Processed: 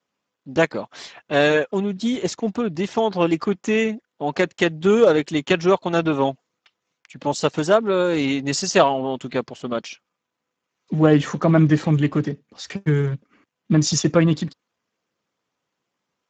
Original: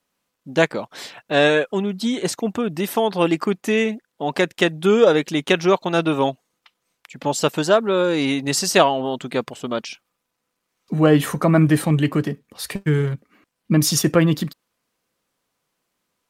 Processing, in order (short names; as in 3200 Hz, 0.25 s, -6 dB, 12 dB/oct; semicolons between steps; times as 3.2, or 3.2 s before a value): gain -1 dB; Speex 13 kbps 16000 Hz